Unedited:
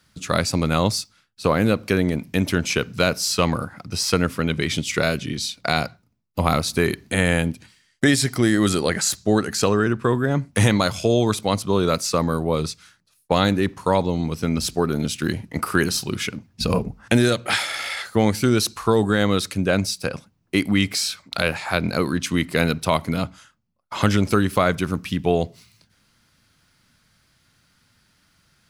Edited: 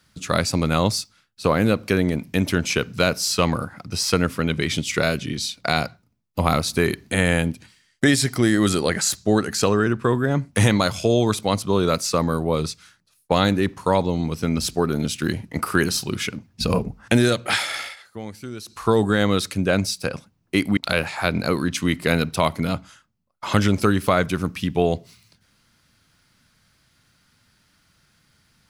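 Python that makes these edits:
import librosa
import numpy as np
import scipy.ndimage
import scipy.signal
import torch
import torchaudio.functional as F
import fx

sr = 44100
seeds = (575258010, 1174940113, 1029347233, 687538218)

y = fx.edit(x, sr, fx.fade_down_up(start_s=17.77, length_s=1.08, db=-16.0, fade_s=0.19),
    fx.cut(start_s=20.77, length_s=0.49), tone=tone)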